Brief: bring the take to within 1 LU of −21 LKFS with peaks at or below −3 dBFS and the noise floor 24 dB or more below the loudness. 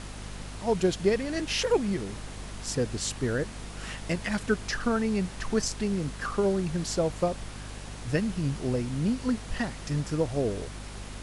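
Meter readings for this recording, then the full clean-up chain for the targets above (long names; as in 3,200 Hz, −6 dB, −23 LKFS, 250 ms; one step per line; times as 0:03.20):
mains hum 50 Hz; hum harmonics up to 250 Hz; level of the hum −39 dBFS; background noise floor −41 dBFS; target noise floor −54 dBFS; integrated loudness −29.5 LKFS; sample peak −12.5 dBFS; target loudness −21.0 LKFS
→ mains-hum notches 50/100/150/200/250 Hz
noise reduction from a noise print 13 dB
level +8.5 dB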